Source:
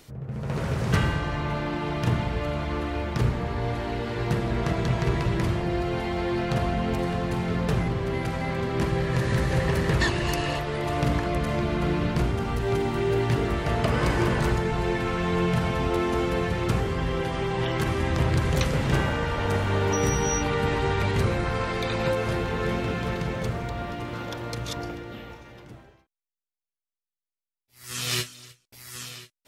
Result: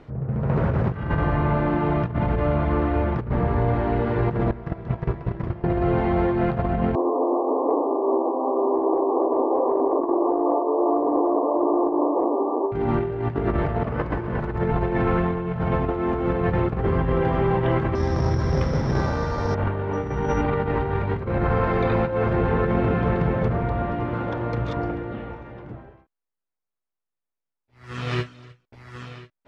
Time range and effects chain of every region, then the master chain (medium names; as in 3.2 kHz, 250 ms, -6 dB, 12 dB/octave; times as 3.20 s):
4.51–5.64 s: gate -23 dBFS, range -18 dB + peaking EQ 5.3 kHz +5 dB 0.27 oct + compression 2:1, threshold -28 dBFS
6.95–12.72 s: square wave that keeps the level + brick-wall FIR band-pass 260–1200 Hz + distance through air 340 m
17.95–19.55 s: careless resampling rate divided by 8×, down filtered, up zero stuff + distance through air 100 m + feedback comb 79 Hz, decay 0.79 s, mix 50%
whole clip: low-pass 1.4 kHz 12 dB/octave; compressor with a negative ratio -27 dBFS, ratio -0.5; trim +6 dB